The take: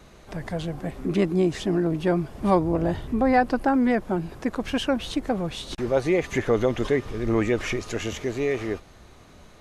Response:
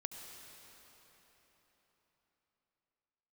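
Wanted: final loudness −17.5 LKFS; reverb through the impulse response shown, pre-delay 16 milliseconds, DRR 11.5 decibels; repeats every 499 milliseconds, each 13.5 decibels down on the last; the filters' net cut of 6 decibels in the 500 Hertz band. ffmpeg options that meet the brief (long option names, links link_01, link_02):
-filter_complex "[0:a]equalizer=frequency=500:width_type=o:gain=-8,aecho=1:1:499|998:0.211|0.0444,asplit=2[link_01][link_02];[1:a]atrim=start_sample=2205,adelay=16[link_03];[link_02][link_03]afir=irnorm=-1:irlink=0,volume=-9.5dB[link_04];[link_01][link_04]amix=inputs=2:normalize=0,volume=9.5dB"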